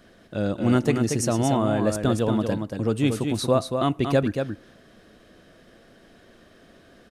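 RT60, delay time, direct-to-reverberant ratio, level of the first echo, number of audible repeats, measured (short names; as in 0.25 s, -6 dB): none, 0.232 s, none, -6.0 dB, 1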